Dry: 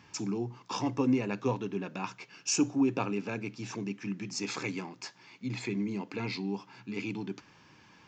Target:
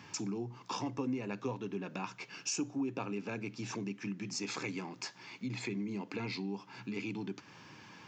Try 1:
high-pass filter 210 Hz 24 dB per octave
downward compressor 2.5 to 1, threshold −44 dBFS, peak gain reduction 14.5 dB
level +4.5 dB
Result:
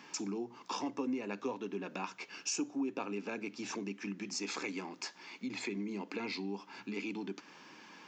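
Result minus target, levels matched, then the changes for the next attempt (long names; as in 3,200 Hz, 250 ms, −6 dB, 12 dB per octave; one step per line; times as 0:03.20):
125 Hz band −7.5 dB
change: high-pass filter 88 Hz 24 dB per octave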